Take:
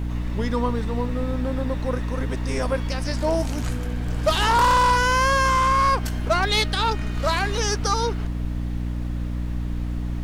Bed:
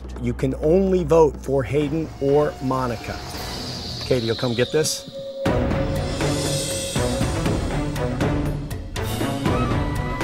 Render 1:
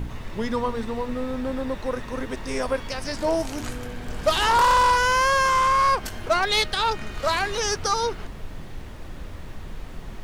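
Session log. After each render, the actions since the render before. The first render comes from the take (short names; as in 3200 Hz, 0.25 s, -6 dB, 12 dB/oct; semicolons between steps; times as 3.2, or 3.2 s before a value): de-hum 60 Hz, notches 5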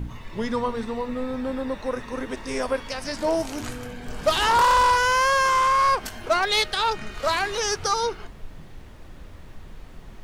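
noise print and reduce 6 dB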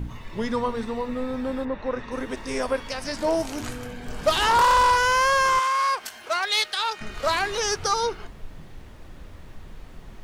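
1.64–2.1 LPF 2000 Hz -> 5500 Hz; 5.59–7.01 HPF 1200 Hz 6 dB/oct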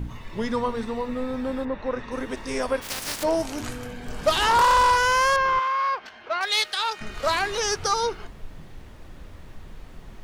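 2.81–3.22 spectral contrast lowered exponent 0.26; 5.36–6.41 air absorption 250 m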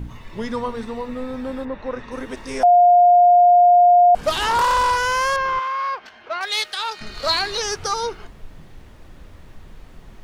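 2.63–4.15 bleep 708 Hz -8.5 dBFS; 6.93–7.62 bell 4300 Hz +14.5 dB 0.34 oct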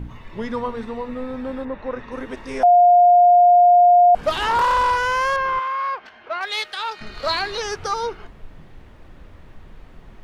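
tone controls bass -1 dB, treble -9 dB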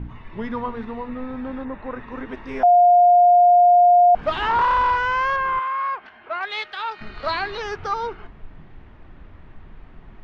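LPF 2800 Hz 12 dB/oct; bell 520 Hz -6 dB 0.39 oct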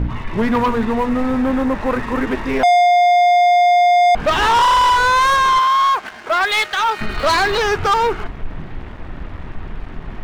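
vocal rider within 3 dB 0.5 s; sample leveller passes 3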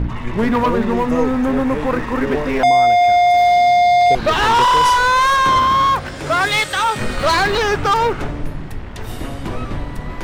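add bed -5.5 dB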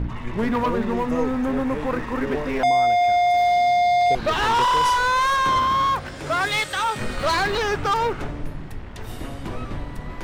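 gain -6 dB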